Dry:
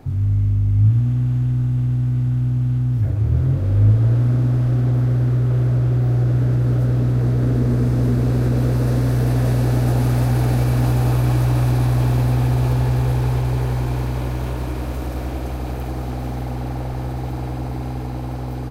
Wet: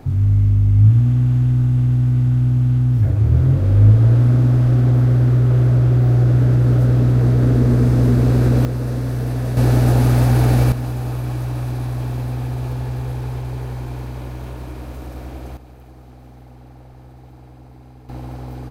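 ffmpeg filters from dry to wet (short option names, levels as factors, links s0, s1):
-af "asetnsamples=n=441:p=0,asendcmd='8.65 volume volume -4dB;9.57 volume volume 3.5dB;10.72 volume volume -6.5dB;15.57 volume volume -16.5dB;18.09 volume volume -4.5dB',volume=1.5"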